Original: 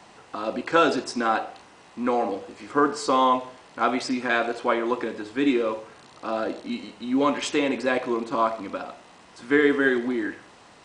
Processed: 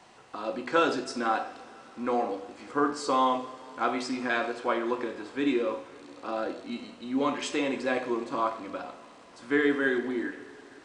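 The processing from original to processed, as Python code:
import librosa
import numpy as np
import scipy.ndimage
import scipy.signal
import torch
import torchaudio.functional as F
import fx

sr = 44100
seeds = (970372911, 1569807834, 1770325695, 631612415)

y = fx.hum_notches(x, sr, base_hz=50, count=5)
y = fx.rev_double_slope(y, sr, seeds[0], early_s=0.47, late_s=4.8, knee_db=-18, drr_db=8.0)
y = y * librosa.db_to_amplitude(-5.5)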